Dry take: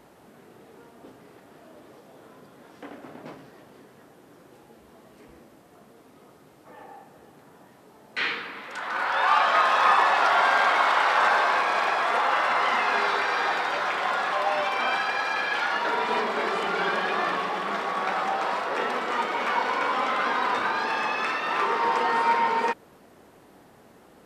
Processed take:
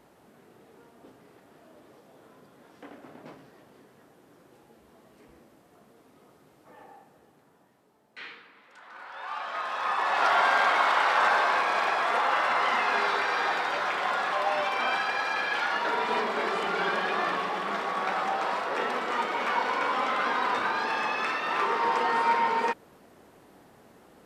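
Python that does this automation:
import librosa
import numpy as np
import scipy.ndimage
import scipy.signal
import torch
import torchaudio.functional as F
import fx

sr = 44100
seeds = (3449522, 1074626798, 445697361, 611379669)

y = fx.gain(x, sr, db=fx.line((6.83, -5.0), (8.51, -17.5), (9.12, -17.5), (9.95, -9.0), (10.25, -2.0)))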